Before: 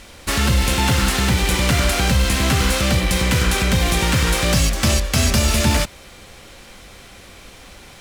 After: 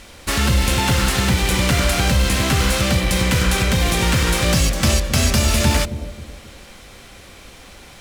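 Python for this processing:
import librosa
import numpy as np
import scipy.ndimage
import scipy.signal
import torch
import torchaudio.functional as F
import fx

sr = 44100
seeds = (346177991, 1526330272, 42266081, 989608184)

y = fx.echo_bbd(x, sr, ms=265, stages=1024, feedback_pct=37, wet_db=-10.5)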